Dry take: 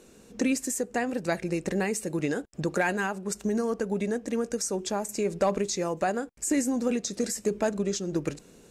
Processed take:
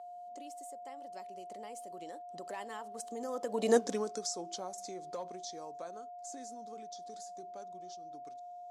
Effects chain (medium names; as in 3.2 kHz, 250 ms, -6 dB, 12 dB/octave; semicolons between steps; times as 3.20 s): Doppler pass-by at 3.76 s, 33 m/s, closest 2.1 m; high-order bell 2 kHz -9 dB 1.1 oct; in parallel at -1.5 dB: compression, threshold -55 dBFS, peak gain reduction 26.5 dB; on the sum: whistle 710 Hz -53 dBFS; frequency weighting A; trim +9.5 dB